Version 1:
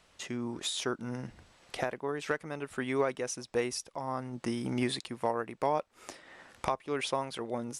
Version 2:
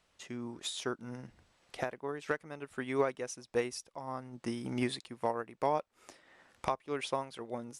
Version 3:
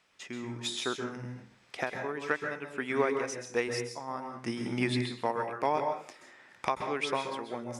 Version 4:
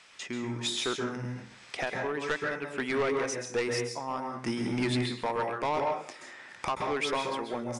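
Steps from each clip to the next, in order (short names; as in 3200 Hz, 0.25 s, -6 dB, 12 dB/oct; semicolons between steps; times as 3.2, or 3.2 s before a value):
upward expander 1.5:1, over -42 dBFS
reverb RT60 0.45 s, pre-delay 0.123 s, DRR 5 dB
soft clip -28.5 dBFS, distortion -9 dB; downsampling 22050 Hz; mismatched tape noise reduction encoder only; gain +5 dB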